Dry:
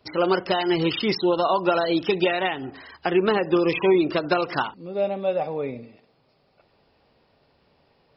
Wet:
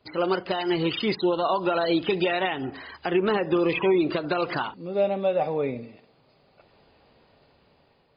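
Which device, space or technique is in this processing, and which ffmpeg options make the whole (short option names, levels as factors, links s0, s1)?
low-bitrate web radio: -filter_complex "[0:a]asettb=1/sr,asplit=3[s0][s1][s2];[s0]atrim=end=3.214[s3];[s1]atrim=start=3.21:end=4.04,asetpts=PTS-STARTPTS,afade=t=in:d=0.004:c=qsin,afade=t=out:st=0.826:d=0.004:c=qsin,lowpass=5000[s4];[s2]atrim=start=4.036[s5];[s3][s4]acrossfade=d=0.004:c1=hsin:c2=qsin[s6];[s6][s5]acrossfade=d=0.004:c1=qsin:c2=hsin,dynaudnorm=f=570:g=5:m=2.66,alimiter=limit=0.299:level=0:latency=1:release=149,volume=0.708" -ar 11025 -c:a libmp3lame -b:a 32k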